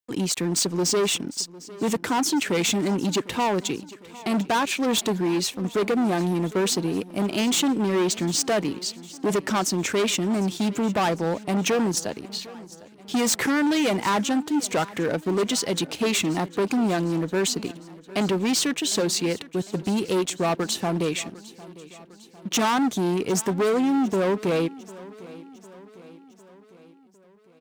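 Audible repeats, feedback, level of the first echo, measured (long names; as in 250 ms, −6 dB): 4, 56%, −19.5 dB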